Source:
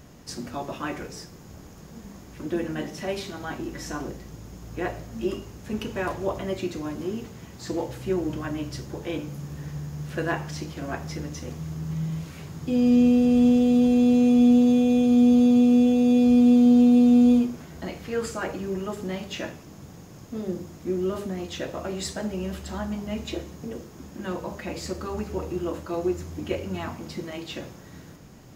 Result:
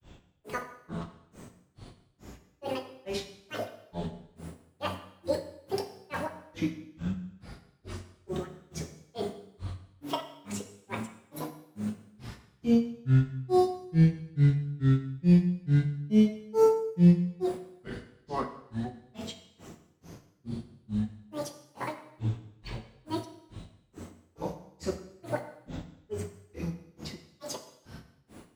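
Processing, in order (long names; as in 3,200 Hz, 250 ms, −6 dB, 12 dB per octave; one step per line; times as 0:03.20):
tape wow and flutter 16 cents
granular cloud 228 ms, grains 2.3 per second, spray 39 ms, pitch spread up and down by 12 semitones
dense smooth reverb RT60 0.81 s, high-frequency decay 0.95×, DRR 7 dB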